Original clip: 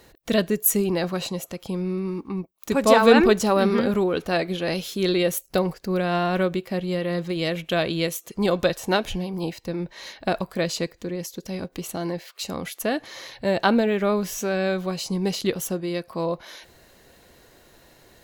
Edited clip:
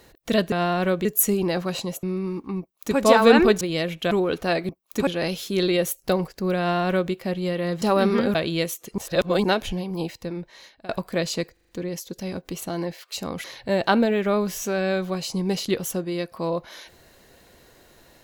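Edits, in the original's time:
1.5–1.84 cut
2.41–2.79 copy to 4.53
3.42–3.95 swap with 7.28–7.78
6.05–6.58 copy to 0.52
8.41–8.87 reverse
9.53–10.32 fade out, to -21.5 dB
10.96 stutter 0.04 s, 5 plays
12.71–13.2 cut

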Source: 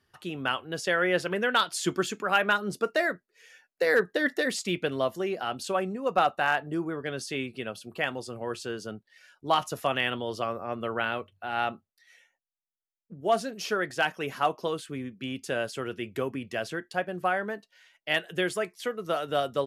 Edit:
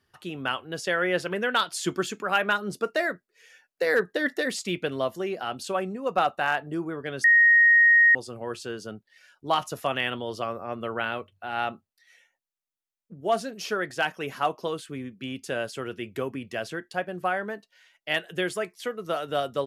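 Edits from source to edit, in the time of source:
7.24–8.15 bleep 1870 Hz -13.5 dBFS

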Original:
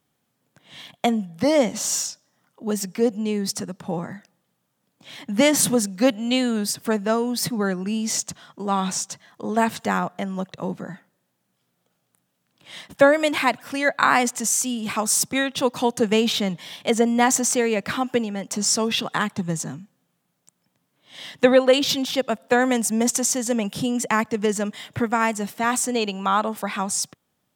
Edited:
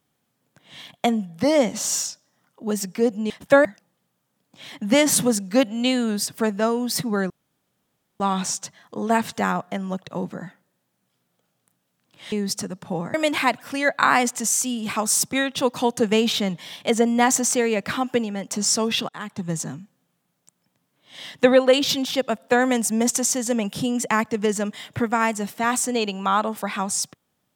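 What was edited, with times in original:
3.3–4.12 swap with 12.79–13.14
7.77–8.67 room tone
19.09–19.56 fade in, from -23.5 dB

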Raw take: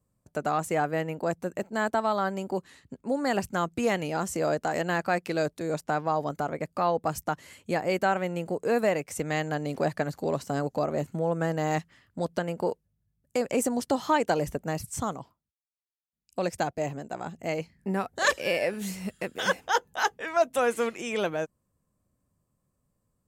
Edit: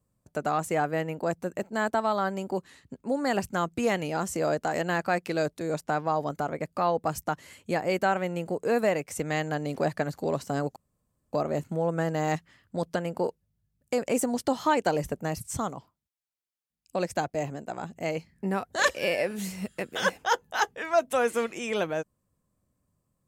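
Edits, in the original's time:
10.76 insert room tone 0.57 s

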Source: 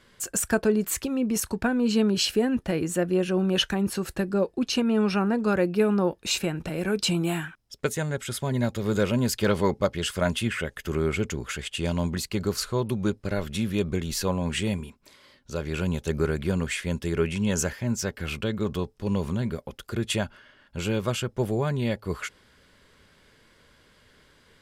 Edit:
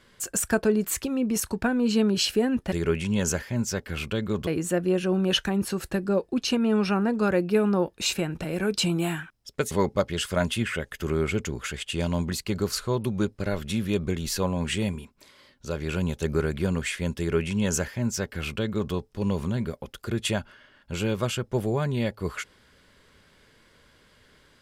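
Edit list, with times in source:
7.96–9.56 cut
17.03–18.78 copy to 2.72

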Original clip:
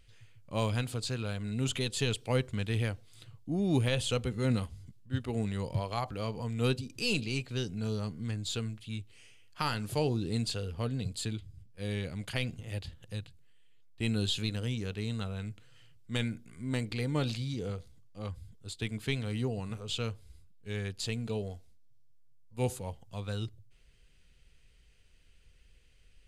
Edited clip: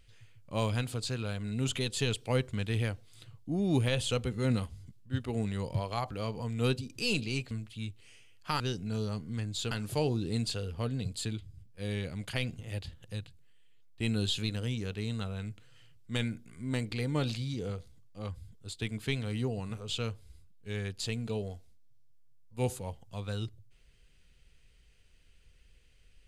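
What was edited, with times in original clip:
8.62–9.71 move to 7.51

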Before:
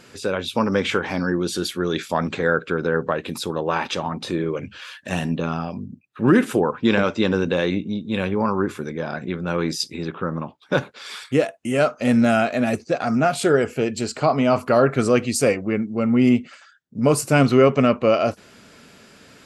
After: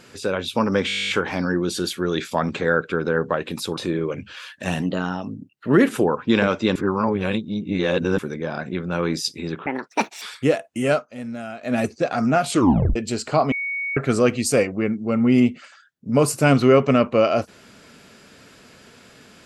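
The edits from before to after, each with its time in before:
0.87 stutter 0.02 s, 12 plays
3.55–4.22 cut
5.27–6.43 speed 110%
7.31–8.74 reverse
10.22–11.11 speed 161%
11.8–12.65 dip -15 dB, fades 0.15 s
13.4 tape stop 0.45 s
14.41–14.86 bleep 2230 Hz -23.5 dBFS

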